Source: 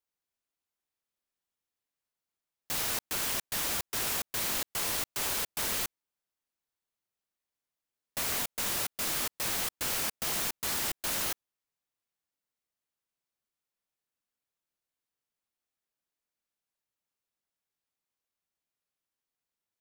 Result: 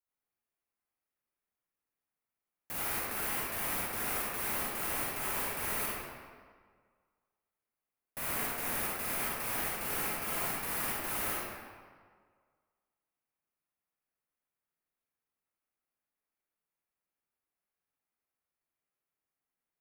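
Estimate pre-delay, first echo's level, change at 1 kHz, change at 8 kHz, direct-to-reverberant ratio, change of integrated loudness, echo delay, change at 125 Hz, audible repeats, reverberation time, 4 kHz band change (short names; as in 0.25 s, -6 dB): 37 ms, none, +1.5 dB, -5.5 dB, -5.5 dB, -3.0 dB, none, -0.5 dB, none, 1.7 s, -9.0 dB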